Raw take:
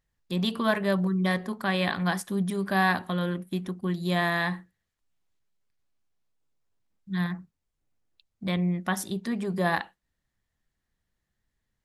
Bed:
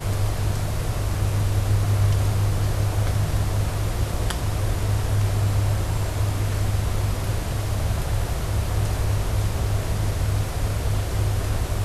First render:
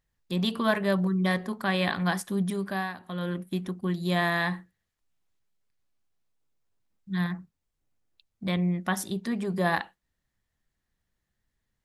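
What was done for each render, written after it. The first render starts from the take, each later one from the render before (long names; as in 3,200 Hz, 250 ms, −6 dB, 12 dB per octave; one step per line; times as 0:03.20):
0:02.51–0:03.39: duck −14 dB, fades 0.41 s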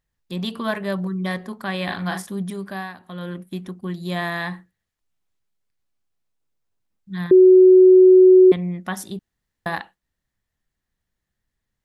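0:01.84–0:02.27: double-tracking delay 43 ms −5 dB
0:07.31–0:08.52: beep over 371 Hz −6.5 dBFS
0:09.19–0:09.66: fill with room tone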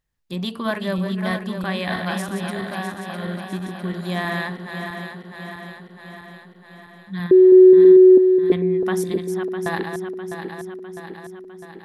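feedback delay that plays each chunk backwards 327 ms, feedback 77%, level −6.5 dB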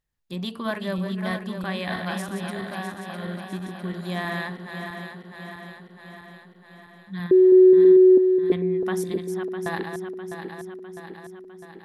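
level −4 dB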